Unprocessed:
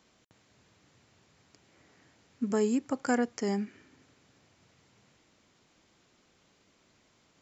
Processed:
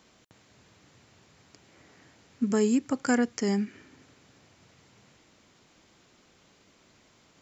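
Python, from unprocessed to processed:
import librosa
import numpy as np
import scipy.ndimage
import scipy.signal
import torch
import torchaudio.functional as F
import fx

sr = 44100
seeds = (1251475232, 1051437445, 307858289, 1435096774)

y = fx.dynamic_eq(x, sr, hz=710.0, q=0.81, threshold_db=-44.0, ratio=4.0, max_db=-6)
y = F.gain(torch.from_numpy(y), 5.5).numpy()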